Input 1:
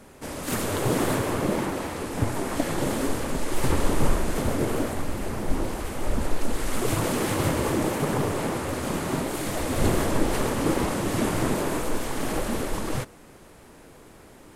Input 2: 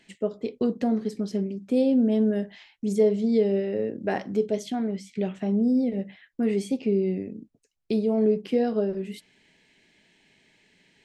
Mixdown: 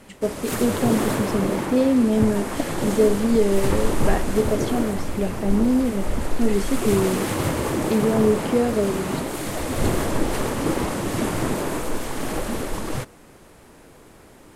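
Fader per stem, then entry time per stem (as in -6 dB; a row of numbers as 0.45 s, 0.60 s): +1.0 dB, +3.0 dB; 0.00 s, 0.00 s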